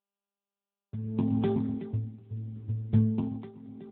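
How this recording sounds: a buzz of ramps at a fixed pitch in blocks of 8 samples; tremolo triangle 0.78 Hz, depth 90%; a quantiser's noise floor 12-bit, dither none; AMR-NB

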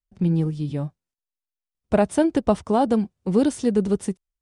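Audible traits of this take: noise floor -90 dBFS; spectral tilt -7.0 dB/octave

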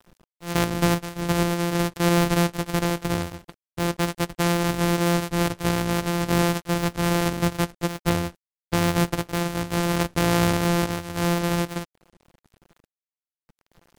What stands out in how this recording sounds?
a buzz of ramps at a fixed pitch in blocks of 256 samples; random-step tremolo; a quantiser's noise floor 10-bit, dither none; MP3

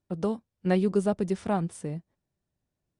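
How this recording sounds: noise floor -85 dBFS; spectral tilt -6.5 dB/octave

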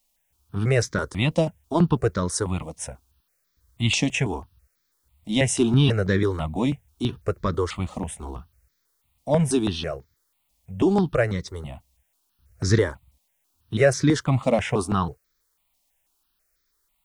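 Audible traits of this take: a quantiser's noise floor 12-bit, dither triangular; notches that jump at a steady rate 6.1 Hz 400–2800 Hz

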